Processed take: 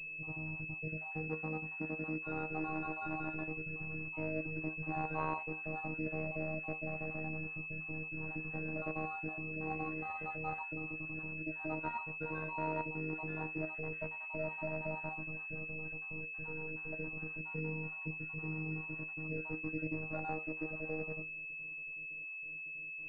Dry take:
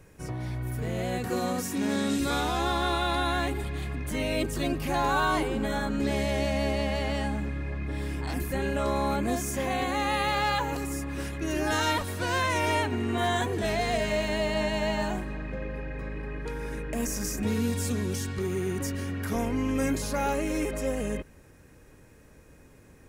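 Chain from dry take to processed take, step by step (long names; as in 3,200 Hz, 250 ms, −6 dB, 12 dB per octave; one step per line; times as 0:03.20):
time-frequency cells dropped at random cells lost 39%
high-frequency loss of the air 500 metres
tuned comb filter 84 Hz, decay 0.22 s, harmonics all, mix 80%
phases set to zero 157 Hz
switching amplifier with a slow clock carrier 2,600 Hz
level +1 dB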